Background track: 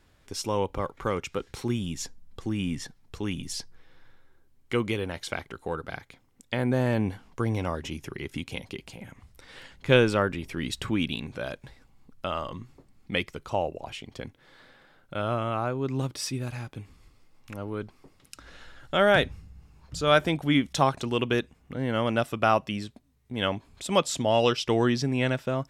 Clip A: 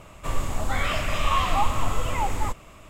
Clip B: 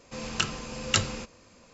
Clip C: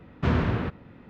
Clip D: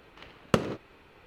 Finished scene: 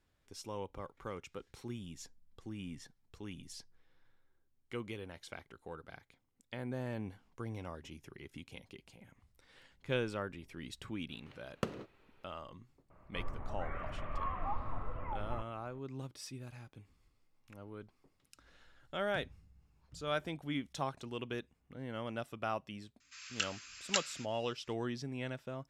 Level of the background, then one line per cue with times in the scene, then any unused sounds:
background track -15 dB
11.09 add D -12.5 dB
12.9 add A -15 dB + LPF 1800 Hz 24 dB/oct
23 add B -8 dB + steep high-pass 1300 Hz 48 dB/oct
not used: C

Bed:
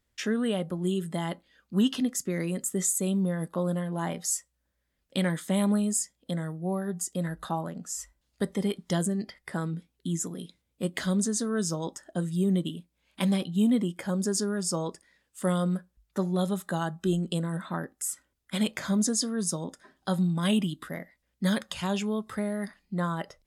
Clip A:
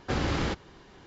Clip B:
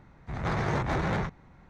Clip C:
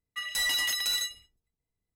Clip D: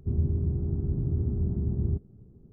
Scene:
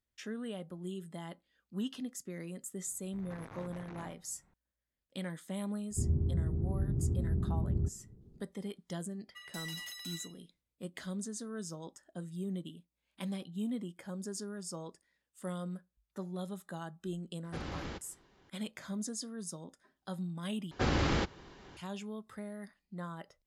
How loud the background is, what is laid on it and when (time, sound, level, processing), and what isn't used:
bed -13 dB
2.85 add B -15 dB + core saturation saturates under 720 Hz
5.91 add D -4.5 dB
9.19 add C -16 dB
17.44 add A -13 dB
20.71 replace with A -1.5 dB

